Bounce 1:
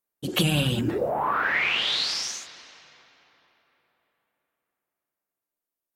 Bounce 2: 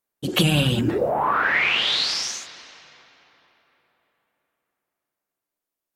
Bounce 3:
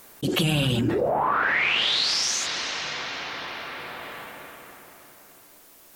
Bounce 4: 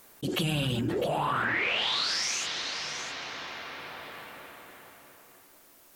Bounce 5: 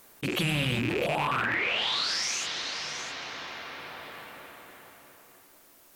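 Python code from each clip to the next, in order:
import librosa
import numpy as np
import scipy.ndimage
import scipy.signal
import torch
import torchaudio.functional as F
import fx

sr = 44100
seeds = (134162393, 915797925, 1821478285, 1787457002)

y1 = fx.high_shelf(x, sr, hz=10000.0, db=-4.5)
y1 = y1 * librosa.db_to_amplitude(4.0)
y2 = fx.env_flatten(y1, sr, amount_pct=70)
y2 = y2 * librosa.db_to_amplitude(-5.5)
y3 = y2 + 10.0 ** (-10.0 / 20.0) * np.pad(y2, (int(655 * sr / 1000.0), 0))[:len(y2)]
y3 = y3 * librosa.db_to_amplitude(-6.0)
y4 = fx.rattle_buzz(y3, sr, strikes_db=-38.0, level_db=-21.0)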